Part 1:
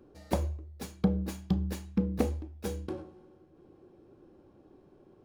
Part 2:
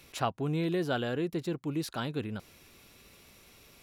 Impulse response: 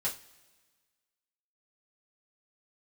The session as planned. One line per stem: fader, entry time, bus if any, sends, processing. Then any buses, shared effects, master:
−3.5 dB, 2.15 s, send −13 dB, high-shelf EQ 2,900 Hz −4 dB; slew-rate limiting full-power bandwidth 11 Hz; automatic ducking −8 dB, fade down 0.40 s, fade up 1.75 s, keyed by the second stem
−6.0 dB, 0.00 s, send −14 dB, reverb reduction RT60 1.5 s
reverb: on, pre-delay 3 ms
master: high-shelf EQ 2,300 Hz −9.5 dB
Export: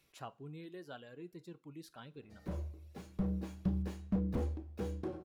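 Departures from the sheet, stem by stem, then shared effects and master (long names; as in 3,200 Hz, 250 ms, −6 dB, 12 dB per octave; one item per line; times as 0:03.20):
stem 2 −6.0 dB → −17.5 dB
master: missing high-shelf EQ 2,300 Hz −9.5 dB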